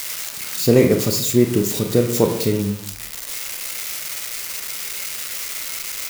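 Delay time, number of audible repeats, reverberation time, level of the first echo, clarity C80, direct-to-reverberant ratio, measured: no echo, no echo, 0.60 s, no echo, 11.0 dB, 3.5 dB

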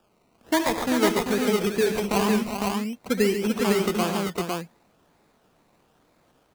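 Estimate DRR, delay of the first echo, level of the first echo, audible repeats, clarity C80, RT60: no reverb, 72 ms, -13.0 dB, 5, no reverb, no reverb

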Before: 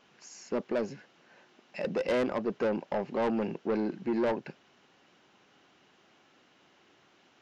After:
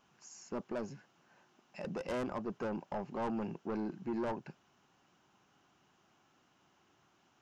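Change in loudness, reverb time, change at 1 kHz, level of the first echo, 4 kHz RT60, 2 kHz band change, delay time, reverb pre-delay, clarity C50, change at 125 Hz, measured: -8.0 dB, no reverb, -5.0 dB, no echo, no reverb, -9.0 dB, no echo, no reverb, no reverb, -3.0 dB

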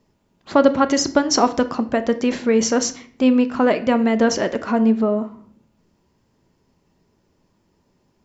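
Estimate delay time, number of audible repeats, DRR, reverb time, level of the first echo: no echo, no echo, 9.5 dB, 0.55 s, no echo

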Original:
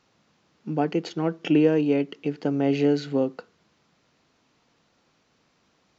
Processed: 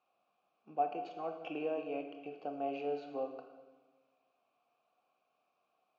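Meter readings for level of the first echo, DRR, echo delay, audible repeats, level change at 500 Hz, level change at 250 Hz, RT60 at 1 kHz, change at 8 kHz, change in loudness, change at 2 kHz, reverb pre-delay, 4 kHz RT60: no echo, 5.0 dB, no echo, no echo, -13.5 dB, -22.0 dB, 1.2 s, no reading, -15.5 dB, -14.5 dB, 19 ms, 1.2 s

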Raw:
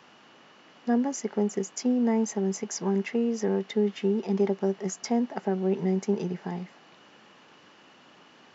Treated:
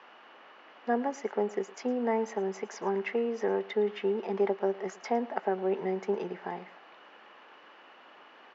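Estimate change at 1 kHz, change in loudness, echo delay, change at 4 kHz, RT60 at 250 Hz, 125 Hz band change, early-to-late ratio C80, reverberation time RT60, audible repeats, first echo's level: +3.0 dB, -4.0 dB, 110 ms, -5.5 dB, no reverb, under -10 dB, no reverb, no reverb, 1, -20.0 dB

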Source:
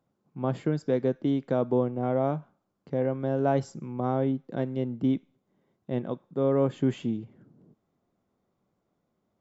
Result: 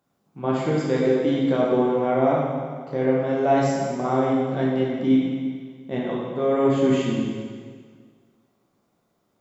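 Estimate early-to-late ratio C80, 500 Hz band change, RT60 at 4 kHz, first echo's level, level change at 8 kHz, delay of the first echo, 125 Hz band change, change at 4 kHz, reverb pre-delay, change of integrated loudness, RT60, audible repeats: 1.0 dB, +6.5 dB, 1.7 s, no echo, no reading, no echo, +2.5 dB, +11.5 dB, 6 ms, +6.0 dB, 1.8 s, no echo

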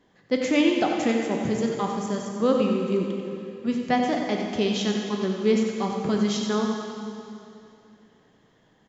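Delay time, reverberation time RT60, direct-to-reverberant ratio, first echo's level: 92 ms, 2.7 s, 0.5 dB, -8.0 dB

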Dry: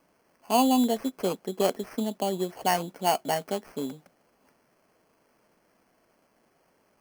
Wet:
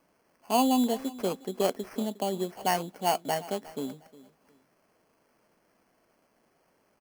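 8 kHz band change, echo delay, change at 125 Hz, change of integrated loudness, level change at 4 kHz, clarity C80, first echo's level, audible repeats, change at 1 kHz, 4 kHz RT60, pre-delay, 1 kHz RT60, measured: -2.0 dB, 359 ms, -2.0 dB, -2.0 dB, -2.0 dB, no reverb, -19.0 dB, 2, -2.0 dB, no reverb, no reverb, no reverb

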